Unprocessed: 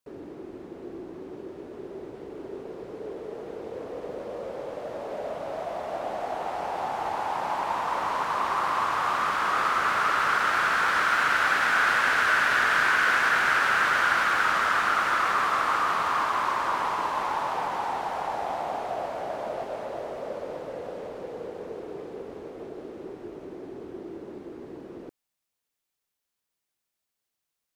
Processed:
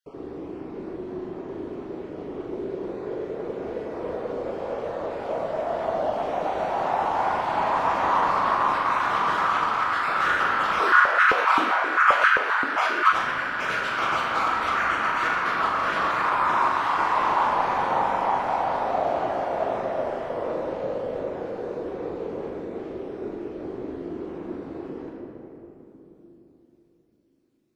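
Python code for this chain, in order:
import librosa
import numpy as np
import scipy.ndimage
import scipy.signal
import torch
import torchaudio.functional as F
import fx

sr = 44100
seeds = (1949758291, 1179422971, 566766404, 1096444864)

y = fx.spec_dropout(x, sr, seeds[0], share_pct=30)
y = fx.lowpass(y, sr, hz=3500.0, slope=6)
y = fx.over_compress(y, sr, threshold_db=-28.0, ratio=-0.5)
y = fx.room_flutter(y, sr, wall_m=7.0, rt60_s=0.36)
y = fx.room_shoebox(y, sr, seeds[1], volume_m3=190.0, walls='hard', distance_m=0.64)
y = fx.filter_held_highpass(y, sr, hz=7.6, low_hz=280.0, high_hz=1500.0, at=(10.79, 13.11), fade=0.02)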